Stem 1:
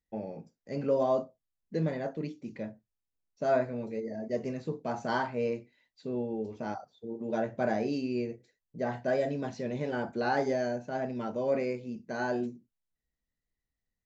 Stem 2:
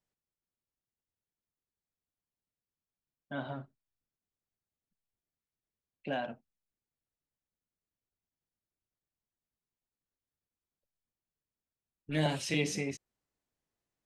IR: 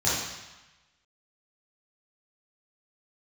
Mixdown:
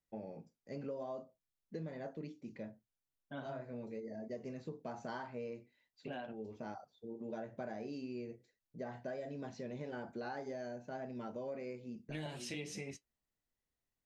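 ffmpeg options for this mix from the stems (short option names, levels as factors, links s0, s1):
-filter_complex "[0:a]volume=0.447[s0];[1:a]flanger=delay=7.1:depth=2.1:regen=-55:speed=0.28:shape=triangular,volume=0.794,asplit=2[s1][s2];[s2]apad=whole_len=619906[s3];[s0][s3]sidechaincompress=threshold=0.00282:ratio=8:attack=12:release=187[s4];[s4][s1]amix=inputs=2:normalize=0,acompressor=threshold=0.01:ratio=6"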